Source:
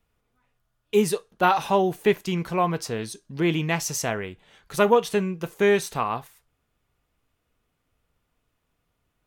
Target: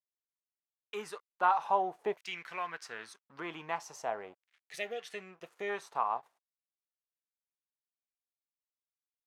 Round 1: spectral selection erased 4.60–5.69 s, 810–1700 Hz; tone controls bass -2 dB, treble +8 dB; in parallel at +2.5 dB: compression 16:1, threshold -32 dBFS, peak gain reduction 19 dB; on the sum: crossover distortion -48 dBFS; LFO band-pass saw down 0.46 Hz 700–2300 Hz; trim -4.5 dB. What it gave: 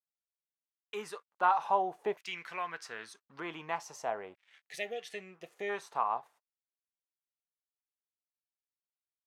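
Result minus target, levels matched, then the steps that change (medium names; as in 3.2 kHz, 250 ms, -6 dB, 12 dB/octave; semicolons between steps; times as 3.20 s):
crossover distortion: distortion -7 dB
change: crossover distortion -40.5 dBFS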